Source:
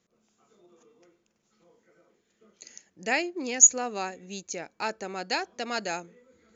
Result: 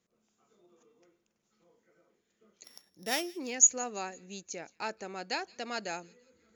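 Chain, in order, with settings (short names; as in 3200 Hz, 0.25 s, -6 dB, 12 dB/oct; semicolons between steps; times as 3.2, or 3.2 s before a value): 2.64–3.36 sample sorter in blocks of 8 samples; thin delay 0.17 s, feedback 43%, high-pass 2700 Hz, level -21 dB; gain -5.5 dB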